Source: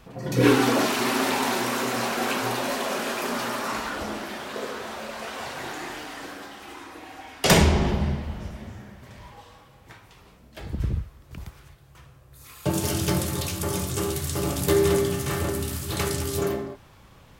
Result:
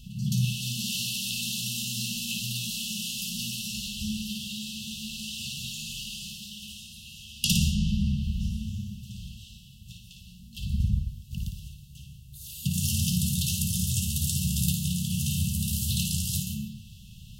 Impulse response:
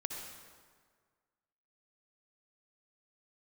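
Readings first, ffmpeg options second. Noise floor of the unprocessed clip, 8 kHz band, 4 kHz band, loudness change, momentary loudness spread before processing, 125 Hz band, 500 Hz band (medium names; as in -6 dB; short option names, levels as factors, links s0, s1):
-52 dBFS, +1.0 dB, +1.0 dB, -3.5 dB, 21 LU, 0.0 dB, under -40 dB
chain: -filter_complex "[0:a]acompressor=threshold=0.0316:ratio=2.5,asplit=2[s0][s1];[1:a]atrim=start_sample=2205,afade=t=out:st=0.19:d=0.01,atrim=end_sample=8820,adelay=56[s2];[s1][s2]afir=irnorm=-1:irlink=0,volume=0.596[s3];[s0][s3]amix=inputs=2:normalize=0,afftfilt=real='re*(1-between(b*sr/4096,230,2600))':imag='im*(1-between(b*sr/4096,230,2600))':win_size=4096:overlap=0.75,volume=1.88"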